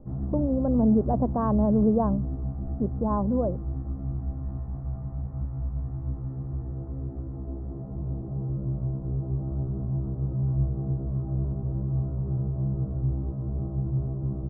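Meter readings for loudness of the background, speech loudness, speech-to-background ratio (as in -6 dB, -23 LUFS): -31.0 LUFS, -25.5 LUFS, 5.5 dB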